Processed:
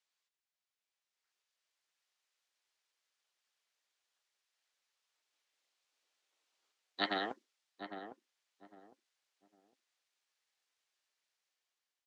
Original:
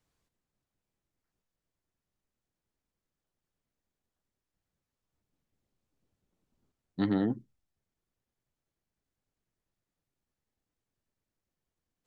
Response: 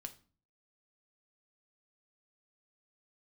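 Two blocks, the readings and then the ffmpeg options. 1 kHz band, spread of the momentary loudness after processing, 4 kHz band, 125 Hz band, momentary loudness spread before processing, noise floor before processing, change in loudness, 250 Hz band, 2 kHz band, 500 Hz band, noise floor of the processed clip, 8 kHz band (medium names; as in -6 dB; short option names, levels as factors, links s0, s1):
+4.5 dB, 18 LU, +10.5 dB, -21.5 dB, 14 LU, under -85 dBFS, -8.5 dB, -16.0 dB, +7.0 dB, -5.0 dB, under -85 dBFS, no reading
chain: -filter_complex "[0:a]acrossover=split=350|550[s0][s1][s2];[s0]acrusher=bits=3:mix=0:aa=0.5[s3];[s1]alimiter=level_in=5.96:limit=0.0631:level=0:latency=1,volume=0.168[s4];[s3][s4][s2]amix=inputs=3:normalize=0,aderivative,dynaudnorm=f=500:g=5:m=3.76,lowpass=3900,equalizer=f=100:w=2.4:g=-12,asplit=2[s5][s6];[s6]adelay=806,lowpass=f=950:p=1,volume=0.422,asplit=2[s7][s8];[s8]adelay=806,lowpass=f=950:p=1,volume=0.27,asplit=2[s9][s10];[s10]adelay=806,lowpass=f=950:p=1,volume=0.27[s11];[s7][s9][s11]amix=inputs=3:normalize=0[s12];[s5][s12]amix=inputs=2:normalize=0,volume=2.37"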